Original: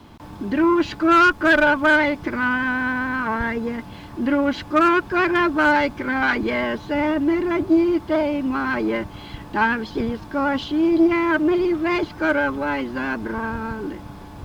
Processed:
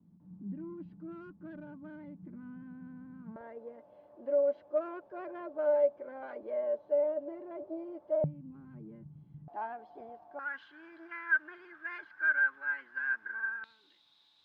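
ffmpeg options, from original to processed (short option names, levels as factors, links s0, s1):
-af "asetnsamples=n=441:p=0,asendcmd='3.36 bandpass f 580;8.24 bandpass f 150;9.48 bandpass f 710;10.39 bandpass f 1600;13.64 bandpass f 3800',bandpass=f=180:t=q:w=16:csg=0"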